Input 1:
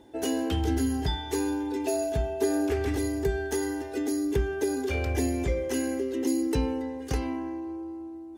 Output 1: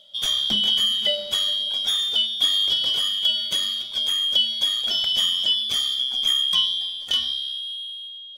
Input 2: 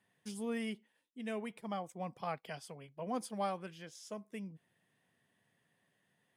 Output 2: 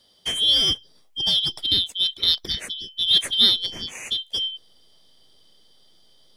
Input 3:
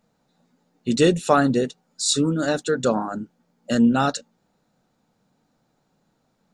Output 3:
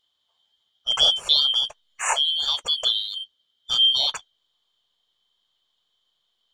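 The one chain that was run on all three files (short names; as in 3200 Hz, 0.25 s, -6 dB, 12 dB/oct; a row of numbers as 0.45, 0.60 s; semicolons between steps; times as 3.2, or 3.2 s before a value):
four-band scrambler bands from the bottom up 3412; high shelf 2500 Hz -5.5 dB; in parallel at -8 dB: backlash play -34.5 dBFS; on the sum: match loudness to -20 LUFS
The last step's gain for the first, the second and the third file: +6.0, +21.0, -1.5 dB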